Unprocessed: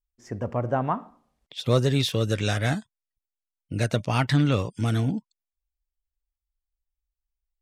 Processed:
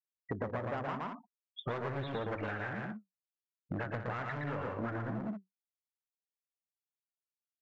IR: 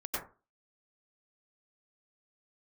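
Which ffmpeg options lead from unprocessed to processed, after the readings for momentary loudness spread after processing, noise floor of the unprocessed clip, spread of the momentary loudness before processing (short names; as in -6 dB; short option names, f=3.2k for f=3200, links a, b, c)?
7 LU, under -85 dBFS, 12 LU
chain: -filter_complex "[0:a]lowpass=2.1k,afftfilt=real='re*gte(hypot(re,im),0.0251)':imag='im*gte(hypot(re,im),0.0251)':win_size=1024:overlap=0.75,flanger=delay=1.8:depth=9.1:regen=57:speed=0.85:shape=triangular,aresample=16000,volume=31.5dB,asoftclip=hard,volume=-31.5dB,aresample=44100,equalizer=f=1.6k:w=0.75:g=14,asplit=2[a][b];[b]aecho=0:1:116.6|177.8:0.708|0.316[c];[a][c]amix=inputs=2:normalize=0,acompressor=threshold=-42dB:ratio=6,equalizer=f=370:w=0.35:g=9.5"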